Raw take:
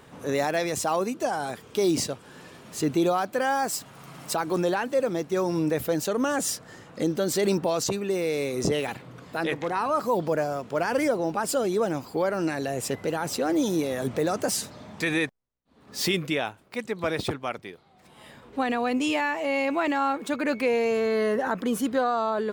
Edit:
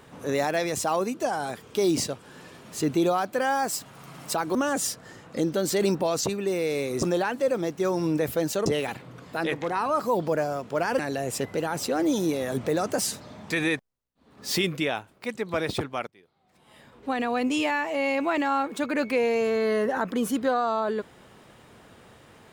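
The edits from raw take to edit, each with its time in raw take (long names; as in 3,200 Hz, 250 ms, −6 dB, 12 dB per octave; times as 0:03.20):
0:04.55–0:06.18: move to 0:08.66
0:10.99–0:12.49: remove
0:17.57–0:18.87: fade in, from −22 dB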